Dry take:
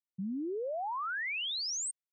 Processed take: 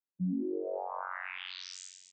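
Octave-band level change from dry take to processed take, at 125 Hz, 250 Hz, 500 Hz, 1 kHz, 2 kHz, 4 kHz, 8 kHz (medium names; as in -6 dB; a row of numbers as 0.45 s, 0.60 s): no reading, +3.0 dB, +0.5 dB, -3.0 dB, -6.0 dB, -9.5 dB, -13.0 dB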